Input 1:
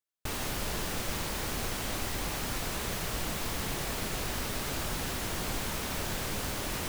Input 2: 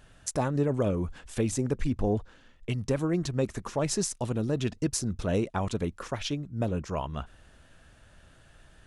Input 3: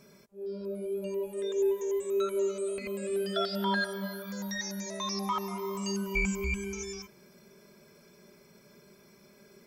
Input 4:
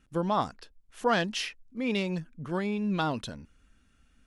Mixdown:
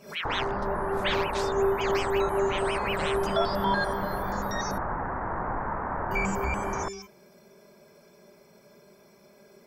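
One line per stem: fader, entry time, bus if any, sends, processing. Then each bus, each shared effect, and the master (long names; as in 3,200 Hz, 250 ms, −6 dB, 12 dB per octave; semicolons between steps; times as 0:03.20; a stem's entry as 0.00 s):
+0.5 dB, 0.00 s, no send, Butterworth low-pass 1,800 Hz 48 dB per octave; parametric band 920 Hz +12 dB 1.1 octaves
muted
−1.0 dB, 0.00 s, muted 0:04.78–0:06.11, no send, parametric band 700 Hz +9.5 dB 1.1 octaves
−2.5 dB, 0.00 s, no send, ring modulator whose carrier an LFO sweeps 1,700 Hz, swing 65%, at 5.5 Hz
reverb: not used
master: background raised ahead of every attack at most 140 dB per second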